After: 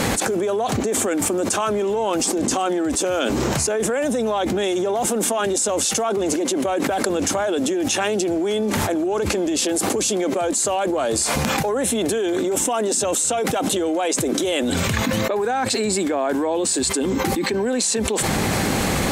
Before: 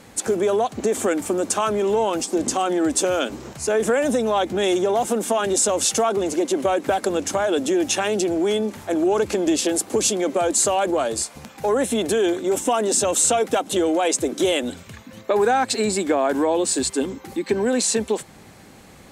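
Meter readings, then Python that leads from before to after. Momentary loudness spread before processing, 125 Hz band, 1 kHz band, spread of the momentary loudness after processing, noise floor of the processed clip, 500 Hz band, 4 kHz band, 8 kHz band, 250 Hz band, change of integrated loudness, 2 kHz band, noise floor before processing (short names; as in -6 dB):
6 LU, +8.5 dB, 0.0 dB, 2 LU, -23 dBFS, -1.0 dB, +2.0 dB, +1.5 dB, +1.5 dB, +0.5 dB, +3.0 dB, -46 dBFS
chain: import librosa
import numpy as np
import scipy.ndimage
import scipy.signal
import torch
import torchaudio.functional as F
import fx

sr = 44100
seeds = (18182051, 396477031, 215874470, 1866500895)

y = fx.env_flatten(x, sr, amount_pct=100)
y = F.gain(torch.from_numpy(y), -5.0).numpy()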